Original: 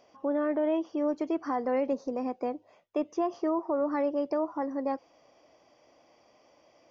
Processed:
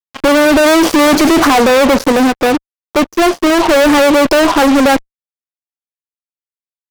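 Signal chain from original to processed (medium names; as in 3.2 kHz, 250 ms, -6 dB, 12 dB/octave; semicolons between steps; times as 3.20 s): 0.66–1.45 s: waveshaping leveller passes 3; fuzz box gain 49 dB, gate -49 dBFS; 2.12–3.60 s: upward expansion 2.5:1, over -34 dBFS; trim +6 dB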